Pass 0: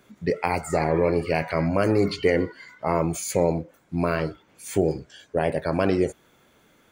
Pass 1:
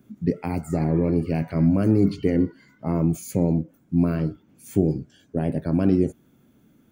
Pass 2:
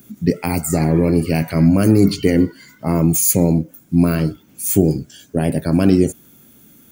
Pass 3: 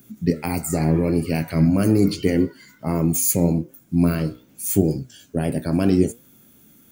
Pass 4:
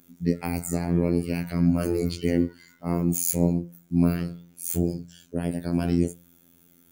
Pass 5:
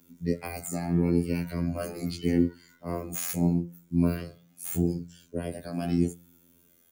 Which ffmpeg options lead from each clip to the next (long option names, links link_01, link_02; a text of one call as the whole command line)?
ffmpeg -i in.wav -af "equalizer=frequency=125:width_type=o:width=1:gain=5,equalizer=frequency=250:width_type=o:width=1:gain=9,equalizer=frequency=500:width_type=o:width=1:gain=-7,equalizer=frequency=1000:width_type=o:width=1:gain=-8,equalizer=frequency=2000:width_type=o:width=1:gain=-9,equalizer=frequency=4000:width_type=o:width=1:gain=-8,equalizer=frequency=8000:width_type=o:width=1:gain=-7" out.wav
ffmpeg -i in.wav -af "crystalizer=i=5:c=0,volume=6dB" out.wav
ffmpeg -i in.wav -af "flanger=delay=7:depth=9.5:regen=78:speed=0.8:shape=triangular" out.wav
ffmpeg -i in.wav -af "bandreject=frequency=52.4:width_type=h:width=4,bandreject=frequency=104.8:width_type=h:width=4,bandreject=frequency=157.2:width_type=h:width=4,afftfilt=real='hypot(re,im)*cos(PI*b)':imag='0':win_size=2048:overlap=0.75,volume=-2.5dB" out.wav
ffmpeg -i in.wav -filter_complex "[0:a]acrossover=split=330|3600[link_01][link_02][link_03];[link_03]aeval=exprs='0.158*(abs(mod(val(0)/0.158+3,4)-2)-1)':channel_layout=same[link_04];[link_01][link_02][link_04]amix=inputs=3:normalize=0,asplit=2[link_05][link_06];[link_06]adelay=9,afreqshift=-0.79[link_07];[link_05][link_07]amix=inputs=2:normalize=1" out.wav